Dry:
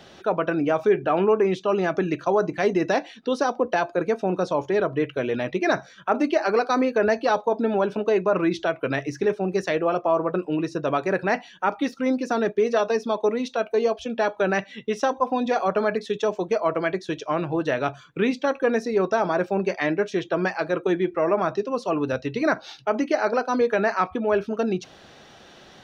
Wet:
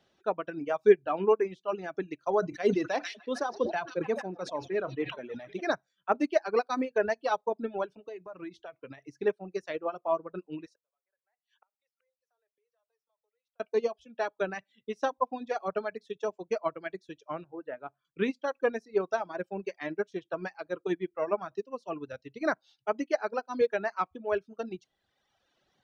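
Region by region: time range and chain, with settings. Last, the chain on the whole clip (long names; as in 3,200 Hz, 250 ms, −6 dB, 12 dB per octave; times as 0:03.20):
0:02.39–0:05.67: echo through a band-pass that steps 151 ms, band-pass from 4,500 Hz, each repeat −0.7 octaves, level −4.5 dB + level that may fall only so fast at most 35 dB per second
0:07.93–0:09.06: parametric band 1,500 Hz −2.5 dB 0.3 octaves + downward compressor 8 to 1, threshold −21 dBFS
0:10.66–0:13.60: Butterworth high-pass 460 Hz 48 dB per octave + downward compressor 3 to 1, threshold −24 dBFS + gate with flip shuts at −31 dBFS, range −31 dB
0:17.44–0:18.05: low-pass filter 1,500 Hz + low-shelf EQ 130 Hz −11.5 dB + upward compression, threshold −42 dBFS
whole clip: reverb reduction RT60 1.5 s; expander for the loud parts 2.5 to 1, over −30 dBFS; level +1.5 dB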